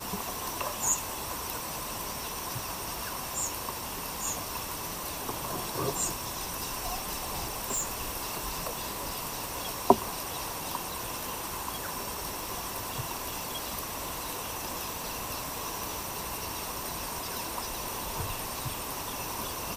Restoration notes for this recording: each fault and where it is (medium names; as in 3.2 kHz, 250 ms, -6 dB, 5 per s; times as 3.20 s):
crackle 130 per s -41 dBFS
6.60–7.83 s: clipped -26.5 dBFS